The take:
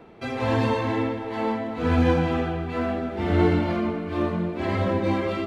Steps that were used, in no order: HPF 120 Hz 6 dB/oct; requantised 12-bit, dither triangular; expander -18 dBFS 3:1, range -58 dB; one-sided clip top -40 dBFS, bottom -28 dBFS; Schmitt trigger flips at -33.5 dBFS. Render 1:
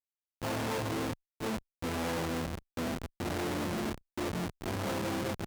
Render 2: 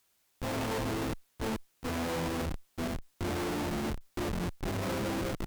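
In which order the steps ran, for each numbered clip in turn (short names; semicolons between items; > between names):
requantised > expander > Schmitt trigger > one-sided clip > HPF; expander > HPF > Schmitt trigger > requantised > one-sided clip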